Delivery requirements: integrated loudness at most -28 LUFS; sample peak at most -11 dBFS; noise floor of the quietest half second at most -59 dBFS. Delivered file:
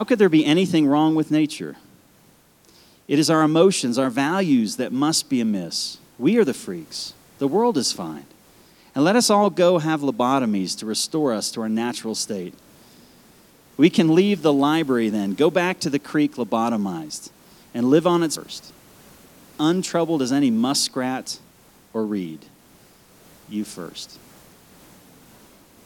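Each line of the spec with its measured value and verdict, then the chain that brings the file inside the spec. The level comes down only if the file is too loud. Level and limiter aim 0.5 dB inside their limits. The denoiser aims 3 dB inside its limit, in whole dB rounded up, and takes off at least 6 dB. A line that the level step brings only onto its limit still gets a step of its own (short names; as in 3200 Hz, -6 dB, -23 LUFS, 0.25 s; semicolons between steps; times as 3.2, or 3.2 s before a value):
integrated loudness -20.5 LUFS: fail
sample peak -3.0 dBFS: fail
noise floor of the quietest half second -55 dBFS: fail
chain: gain -8 dB; limiter -11.5 dBFS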